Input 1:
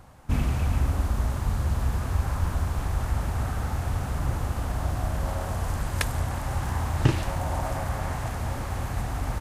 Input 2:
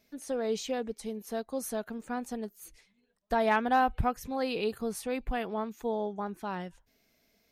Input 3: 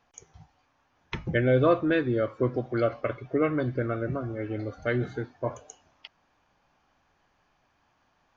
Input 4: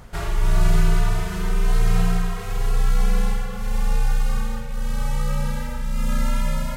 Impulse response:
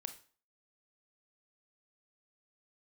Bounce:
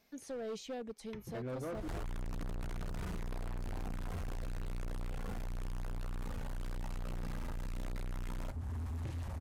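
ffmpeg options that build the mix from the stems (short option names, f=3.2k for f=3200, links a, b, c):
-filter_complex "[0:a]equalizer=f=80:t=o:w=1.1:g=15,adelay=2000,volume=-11.5dB[a];[1:a]volume=-2.5dB[b];[2:a]volume=-11dB[c];[3:a]acontrast=33,asoftclip=type=hard:threshold=-17.5dB,adelay=1750,volume=1dB[d];[a][b][c][d]amix=inputs=4:normalize=0,acrossover=split=730|6200[e][f][g];[e]acompressor=threshold=-28dB:ratio=4[h];[f]acompressor=threshold=-46dB:ratio=4[i];[g]acompressor=threshold=-57dB:ratio=4[j];[h][i][j]amix=inputs=3:normalize=0,asoftclip=type=hard:threshold=-32.5dB,alimiter=level_in=13dB:limit=-24dB:level=0:latency=1:release=325,volume=-13dB"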